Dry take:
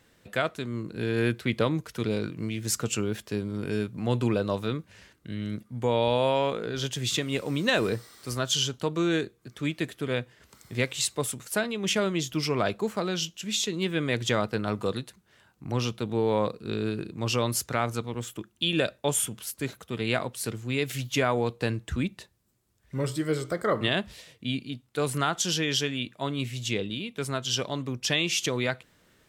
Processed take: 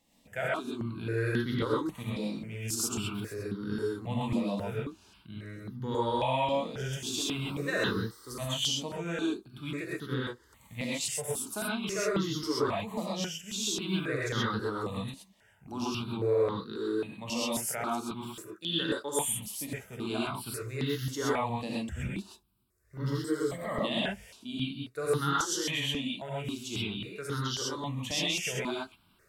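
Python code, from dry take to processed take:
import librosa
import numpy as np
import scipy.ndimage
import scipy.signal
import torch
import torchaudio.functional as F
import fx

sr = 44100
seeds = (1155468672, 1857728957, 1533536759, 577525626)

y = fx.highpass(x, sr, hz=180.0, slope=12, at=(16.6, 19.19))
y = fx.rev_gated(y, sr, seeds[0], gate_ms=150, shape='rising', drr_db=-5.5)
y = fx.phaser_held(y, sr, hz=3.7, low_hz=400.0, high_hz=2400.0)
y = y * 10.0 ** (-7.0 / 20.0)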